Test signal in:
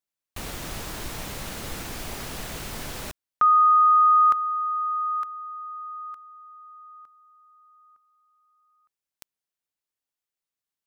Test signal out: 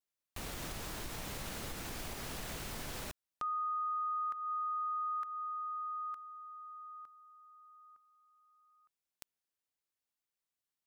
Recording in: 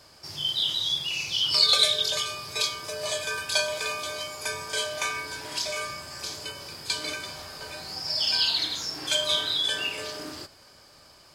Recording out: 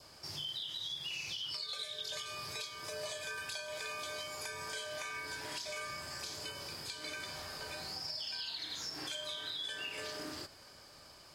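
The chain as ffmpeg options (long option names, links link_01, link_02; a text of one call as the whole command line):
ffmpeg -i in.wav -af "adynamicequalizer=threshold=0.00794:dfrequency=1800:dqfactor=3.1:tfrequency=1800:tqfactor=3.1:attack=5:release=100:ratio=0.375:range=2.5:mode=boostabove:tftype=bell,acompressor=threshold=-31dB:ratio=16:attack=0.53:release=402:knee=6:detection=peak,volume=-3dB" out.wav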